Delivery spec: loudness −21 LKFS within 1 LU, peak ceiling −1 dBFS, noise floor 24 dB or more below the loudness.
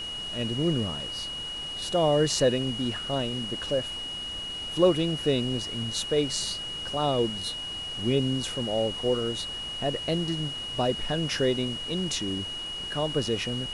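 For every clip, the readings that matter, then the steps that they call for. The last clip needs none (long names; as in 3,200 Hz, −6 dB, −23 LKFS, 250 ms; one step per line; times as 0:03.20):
interfering tone 2,900 Hz; level of the tone −33 dBFS; background noise floor −36 dBFS; target noise floor −52 dBFS; integrated loudness −28.0 LKFS; sample peak −9.0 dBFS; target loudness −21.0 LKFS
→ notch filter 2,900 Hz, Q 30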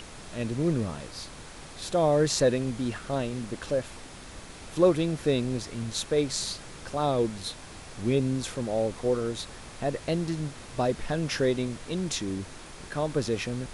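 interfering tone none found; background noise floor −45 dBFS; target noise floor −53 dBFS
→ noise reduction from a noise print 8 dB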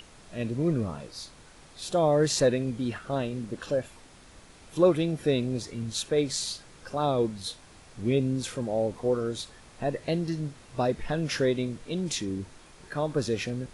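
background noise floor −53 dBFS; integrated loudness −29.0 LKFS; sample peak −9.5 dBFS; target loudness −21.0 LKFS
→ level +8 dB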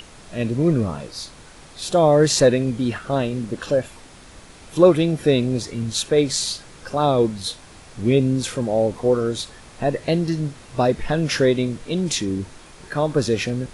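integrated loudness −21.0 LKFS; sample peak −1.5 dBFS; background noise floor −45 dBFS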